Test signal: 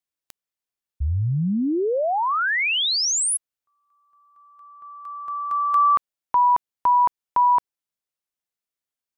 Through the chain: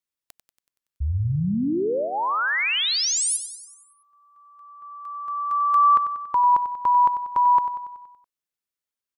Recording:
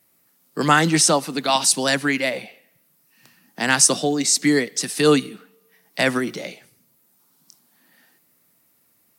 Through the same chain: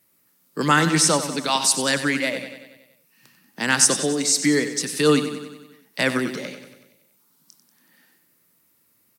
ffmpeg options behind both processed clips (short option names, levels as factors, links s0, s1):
-af "equalizer=f=710:w=7.3:g=-9.5,aecho=1:1:94|188|282|376|470|564|658:0.282|0.163|0.0948|0.055|0.0319|0.0185|0.0107,volume=0.841"